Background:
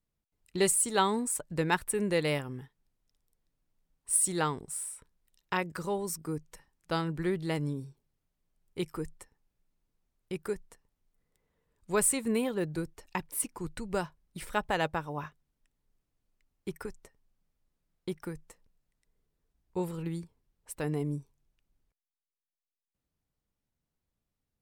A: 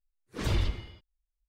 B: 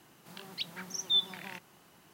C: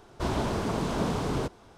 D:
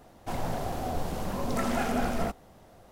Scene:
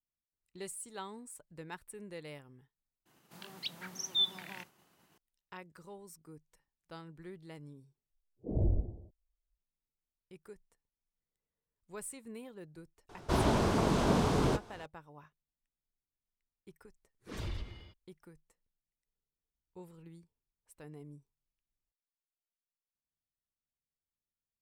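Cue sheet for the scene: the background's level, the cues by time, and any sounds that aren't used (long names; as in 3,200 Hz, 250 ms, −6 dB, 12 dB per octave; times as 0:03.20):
background −17.5 dB
0:03.05: overwrite with B −2.5 dB + downward expander −56 dBFS
0:08.10: overwrite with A −1 dB + elliptic low-pass filter 700 Hz, stop band 50 dB
0:13.09: mix in C + double-tracking delay 21 ms −13 dB
0:16.93: mix in A −3.5 dB + downward compressor 1.5 to 1, threshold −46 dBFS
not used: D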